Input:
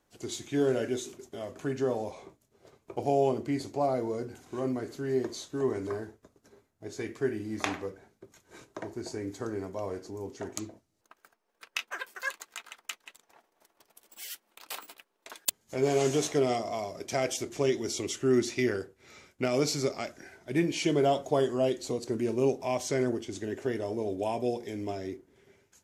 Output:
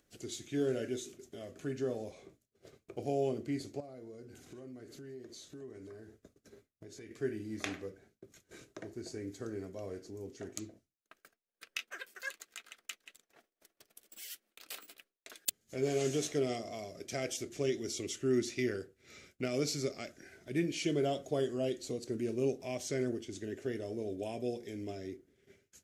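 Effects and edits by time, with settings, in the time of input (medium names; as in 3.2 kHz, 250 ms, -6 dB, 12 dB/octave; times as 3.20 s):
3.80–7.11 s: compression 2.5:1, threshold -45 dBFS
whole clip: expander -54 dBFS; peaking EQ 930 Hz -14.5 dB 0.63 oct; upward compressor, threshold -42 dBFS; trim -5 dB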